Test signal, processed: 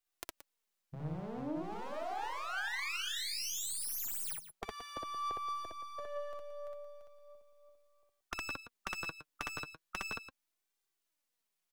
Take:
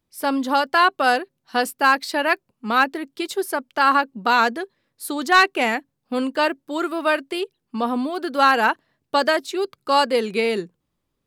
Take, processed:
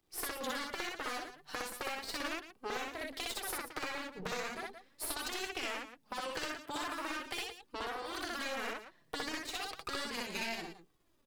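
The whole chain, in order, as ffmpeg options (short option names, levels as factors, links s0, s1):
-filter_complex "[0:a]aeval=exprs='if(lt(val(0),0),0.251*val(0),val(0))':c=same,acrossover=split=80|360[s0][s1][s2];[s0]acompressor=threshold=0.0141:ratio=4[s3];[s1]acompressor=threshold=0.0126:ratio=4[s4];[s2]acompressor=threshold=0.0316:ratio=4[s5];[s3][s4][s5]amix=inputs=3:normalize=0,asoftclip=type=tanh:threshold=0.0944,afftfilt=real='re*lt(hypot(re,im),0.112)':imag='im*lt(hypot(re,im),0.112)':win_size=1024:overlap=0.75,aeval=exprs='0.0944*(cos(1*acos(clip(val(0)/0.0944,-1,1)))-cos(1*PI/2))+0.0299*(cos(4*acos(clip(val(0)/0.0944,-1,1)))-cos(4*PI/2))':c=same,acompressor=threshold=0.00891:ratio=4,lowshelf=f=150:g=-6,asplit=2[s6][s7];[s7]aecho=0:1:61.22|174.9:0.891|0.282[s8];[s6][s8]amix=inputs=2:normalize=0,flanger=delay=2.5:depth=4.3:regen=40:speed=0.37:shape=sinusoidal,volume=2.37"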